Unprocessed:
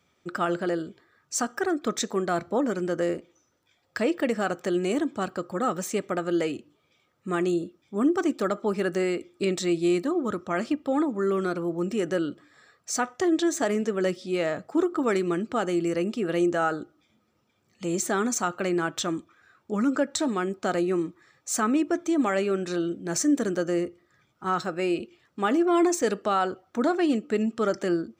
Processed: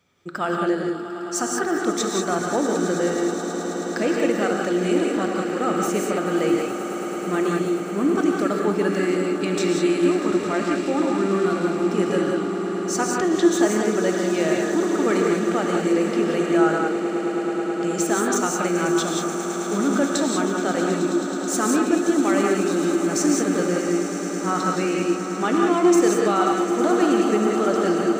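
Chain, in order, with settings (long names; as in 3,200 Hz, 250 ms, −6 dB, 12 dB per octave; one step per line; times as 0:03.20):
echo that builds up and dies away 107 ms, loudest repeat 8, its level −15 dB
reverb whose tail is shaped and stops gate 210 ms rising, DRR 0.5 dB
level +1 dB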